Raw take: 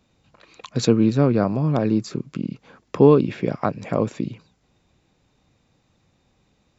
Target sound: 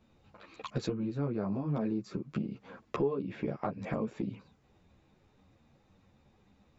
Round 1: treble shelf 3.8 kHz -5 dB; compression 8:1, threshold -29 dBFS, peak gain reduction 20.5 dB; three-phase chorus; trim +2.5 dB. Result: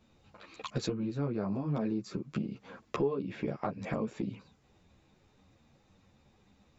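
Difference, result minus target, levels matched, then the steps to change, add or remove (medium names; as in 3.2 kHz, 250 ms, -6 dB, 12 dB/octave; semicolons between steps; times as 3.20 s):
8 kHz band +5.5 dB
change: treble shelf 3.8 kHz -12.5 dB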